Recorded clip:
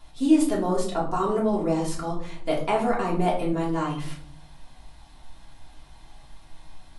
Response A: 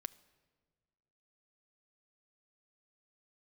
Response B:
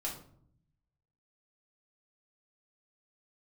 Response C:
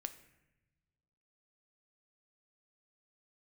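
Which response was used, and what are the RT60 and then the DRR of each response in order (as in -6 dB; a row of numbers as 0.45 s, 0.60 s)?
B; 1.5 s, 0.60 s, 1.0 s; 11.5 dB, -5.0 dB, 9.0 dB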